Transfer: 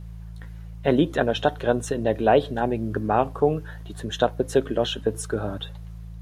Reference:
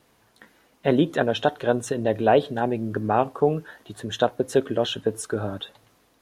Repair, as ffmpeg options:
ffmpeg -i in.wav -af "bandreject=frequency=55.4:width_type=h:width=4,bandreject=frequency=110.8:width_type=h:width=4,bandreject=frequency=166.2:width_type=h:width=4" out.wav

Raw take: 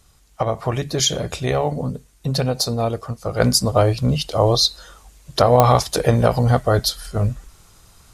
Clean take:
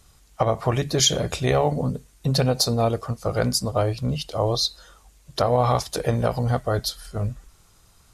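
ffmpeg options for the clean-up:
ffmpeg -i in.wav -af "adeclick=threshold=4,asetnsamples=nb_out_samples=441:pad=0,asendcmd='3.4 volume volume -6.5dB',volume=0dB" out.wav

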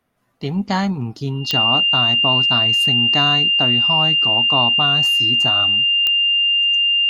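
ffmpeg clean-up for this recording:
ffmpeg -i in.wav -af "adeclick=threshold=4,bandreject=frequency=2800:width=30" out.wav

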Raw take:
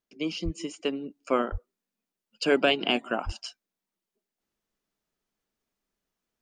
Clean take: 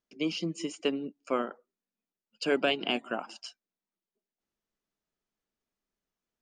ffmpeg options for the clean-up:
ffmpeg -i in.wav -filter_complex "[0:a]asplit=3[link_01][link_02][link_03];[link_01]afade=type=out:start_time=0.44:duration=0.02[link_04];[link_02]highpass=frequency=140:width=0.5412,highpass=frequency=140:width=1.3066,afade=type=in:start_time=0.44:duration=0.02,afade=type=out:start_time=0.56:duration=0.02[link_05];[link_03]afade=type=in:start_time=0.56:duration=0.02[link_06];[link_04][link_05][link_06]amix=inputs=3:normalize=0,asplit=3[link_07][link_08][link_09];[link_07]afade=type=out:start_time=1.51:duration=0.02[link_10];[link_08]highpass=frequency=140:width=0.5412,highpass=frequency=140:width=1.3066,afade=type=in:start_time=1.51:duration=0.02,afade=type=out:start_time=1.63:duration=0.02[link_11];[link_09]afade=type=in:start_time=1.63:duration=0.02[link_12];[link_10][link_11][link_12]amix=inputs=3:normalize=0,asplit=3[link_13][link_14][link_15];[link_13]afade=type=out:start_time=3.25:duration=0.02[link_16];[link_14]highpass=frequency=140:width=0.5412,highpass=frequency=140:width=1.3066,afade=type=in:start_time=3.25:duration=0.02,afade=type=out:start_time=3.37:duration=0.02[link_17];[link_15]afade=type=in:start_time=3.37:duration=0.02[link_18];[link_16][link_17][link_18]amix=inputs=3:normalize=0,asetnsamples=nb_out_samples=441:pad=0,asendcmd='1.1 volume volume -4.5dB',volume=0dB" out.wav

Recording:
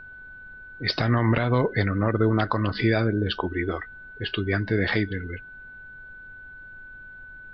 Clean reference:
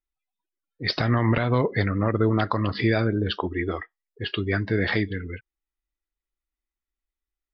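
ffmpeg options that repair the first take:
ffmpeg -i in.wav -af "bandreject=frequency=1500:width=30,afftdn=noise_reduction=30:noise_floor=-44" out.wav

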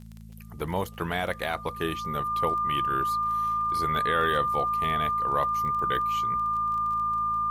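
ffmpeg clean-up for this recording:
ffmpeg -i in.wav -af "adeclick=threshold=4,bandreject=frequency=54.8:width_type=h:width=4,bandreject=frequency=109.6:width_type=h:width=4,bandreject=frequency=164.4:width_type=h:width=4,bandreject=frequency=219.2:width_type=h:width=4,bandreject=frequency=1200:width=30,agate=range=-21dB:threshold=-33dB" out.wav

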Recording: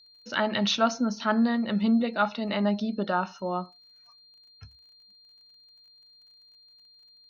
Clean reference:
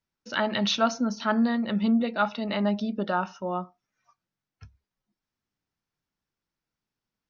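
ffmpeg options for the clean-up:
ffmpeg -i in.wav -af "adeclick=threshold=4,bandreject=frequency=4200:width=30" out.wav

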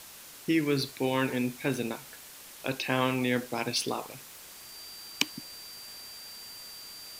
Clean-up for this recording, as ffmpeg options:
ffmpeg -i in.wav -af "bandreject=frequency=4700:width=30,afwtdn=0.0045" out.wav

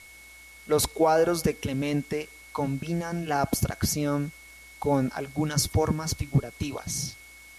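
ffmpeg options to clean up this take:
ffmpeg -i in.wav -af "bandreject=frequency=2200:width=30,afftdn=noise_reduction=22:noise_floor=-49" out.wav

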